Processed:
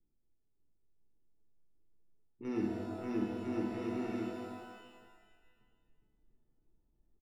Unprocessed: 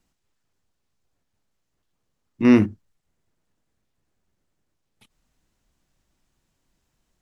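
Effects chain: on a send: bouncing-ball echo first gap 0.59 s, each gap 0.7×, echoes 5; on the sum: dynamic EQ 2400 Hz, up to -7 dB, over -47 dBFS, Q 2.4; reverse; compressor 5:1, threshold -28 dBFS, peak gain reduction 16 dB; reverse; small resonant body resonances 330/2500 Hz, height 10 dB, ringing for 45 ms; low-pass opened by the level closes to 320 Hz, open at -28 dBFS; resonator 440 Hz, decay 0.24 s, harmonics all, mix 90%; wow and flutter 40 cents; shimmer reverb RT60 1.6 s, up +12 st, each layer -8 dB, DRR -0.5 dB; gain +5.5 dB

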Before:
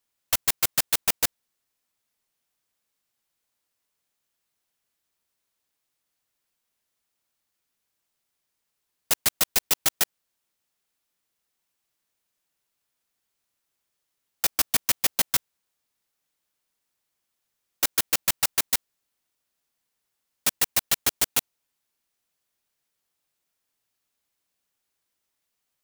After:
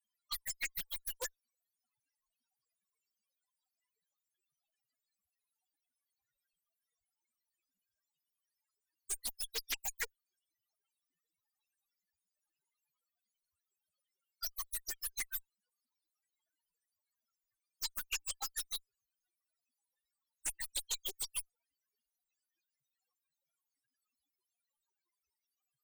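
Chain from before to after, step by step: loudest bins only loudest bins 4; added harmonics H 5 -12 dB, 6 -14 dB, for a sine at -29 dBFS; Doppler distortion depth 0.54 ms; gain +2 dB

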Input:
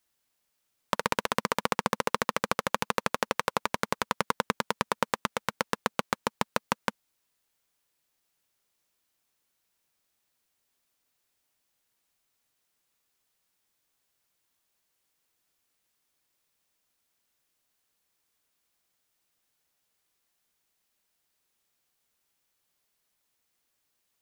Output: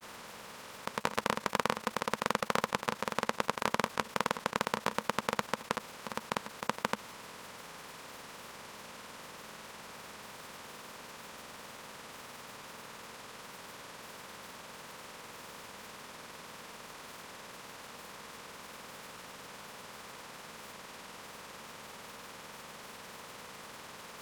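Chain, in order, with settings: per-bin compression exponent 0.4; level quantiser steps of 18 dB; grains, pitch spread up and down by 0 st; gain +7 dB

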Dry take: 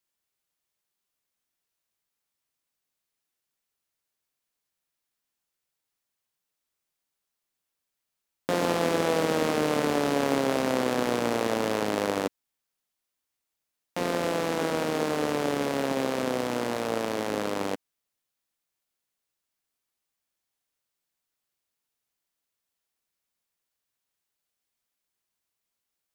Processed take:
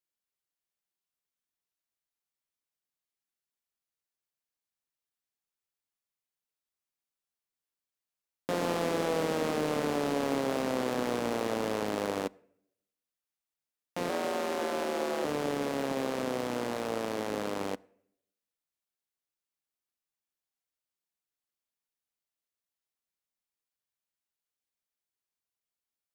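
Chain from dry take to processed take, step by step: sample leveller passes 1; 14.09–15.25 frequency shift +65 Hz; on a send: reverb RT60 0.70 s, pre-delay 3 ms, DRR 23 dB; on the sum: gain -7.5 dB

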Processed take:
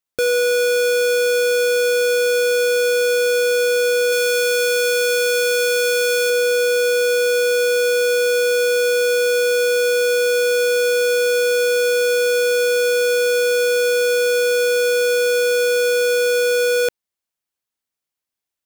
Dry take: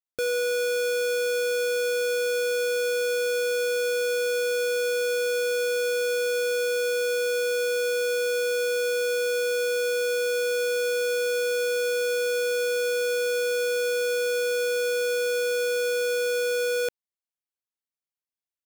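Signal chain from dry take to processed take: 4.12–6.3 tilt shelf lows -3 dB; gain +8.5 dB

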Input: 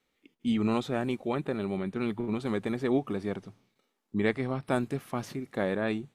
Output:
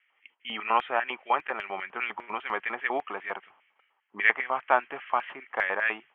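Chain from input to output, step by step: Chebyshev low-pass 3200 Hz, order 8; LFO high-pass square 5 Hz 930–1900 Hz; gain +7 dB

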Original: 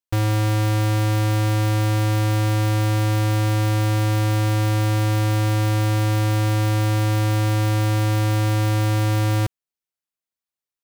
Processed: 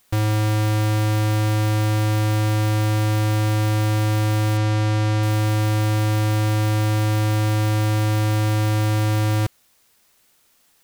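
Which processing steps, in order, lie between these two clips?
4.57–5.23 LPF 7000 Hz 12 dB/oct; requantised 10-bit, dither triangular

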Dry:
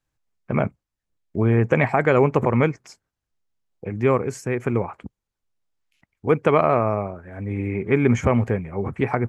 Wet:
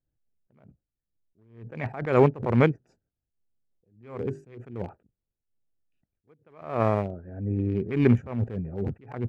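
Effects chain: Wiener smoothing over 41 samples; 3.99–4.57 notches 50/100/150/200/250/300/350/400 Hz; attack slew limiter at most 110 dB/s

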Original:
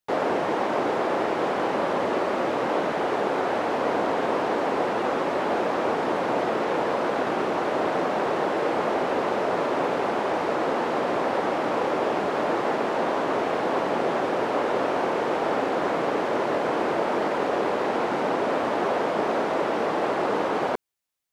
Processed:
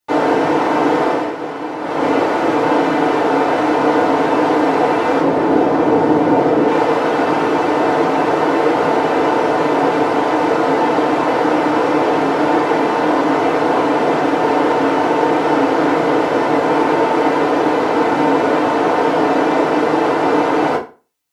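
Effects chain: 1.04–2.07 dip -9.5 dB, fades 0.28 s; 5.2–6.68 tilt shelf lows +5.5 dB, about 670 Hz; FDN reverb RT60 0.34 s, low-frequency decay 1.05×, high-frequency decay 0.85×, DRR -7.5 dB; gain +1 dB

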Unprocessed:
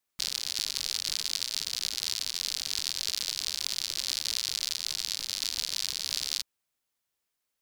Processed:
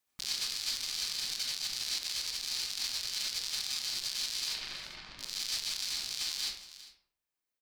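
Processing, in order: reverb removal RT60 2 s; 4.46–5.18 LPF 3000 Hz -> 1300 Hz 12 dB/oct; echo 0.4 s -18.5 dB; reverb RT60 0.60 s, pre-delay 62 ms, DRR -4 dB; limiter -19.5 dBFS, peak gain reduction 9.5 dB

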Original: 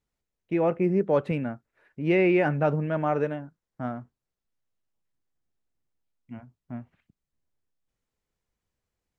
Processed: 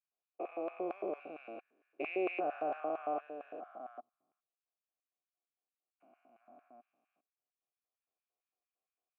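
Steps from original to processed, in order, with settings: stepped spectrum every 0.4 s; LFO high-pass square 4.4 Hz 320–1700 Hz; vowel filter a; gain +2.5 dB

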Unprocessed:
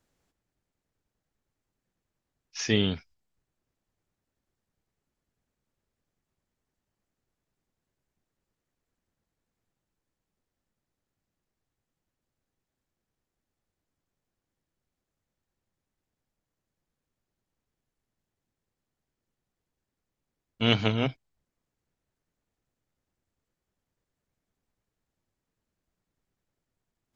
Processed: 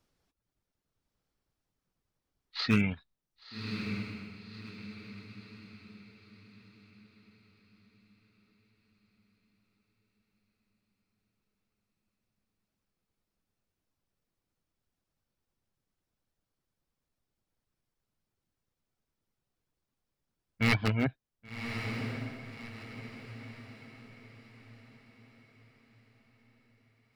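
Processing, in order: wavefolder -14.5 dBFS; reverb removal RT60 0.64 s; formant shift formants -5 st; on a send: diffused feedback echo 1.121 s, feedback 42%, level -7 dB

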